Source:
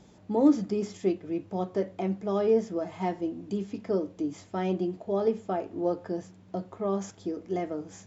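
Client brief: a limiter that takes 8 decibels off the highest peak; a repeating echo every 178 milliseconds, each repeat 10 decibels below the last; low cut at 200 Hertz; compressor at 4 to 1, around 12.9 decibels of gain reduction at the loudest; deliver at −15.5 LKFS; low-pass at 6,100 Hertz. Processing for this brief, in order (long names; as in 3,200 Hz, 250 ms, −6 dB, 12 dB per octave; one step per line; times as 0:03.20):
high-pass filter 200 Hz
low-pass filter 6,100 Hz
downward compressor 4 to 1, threshold −32 dBFS
brickwall limiter −30.5 dBFS
repeating echo 178 ms, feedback 32%, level −10 dB
level +24.5 dB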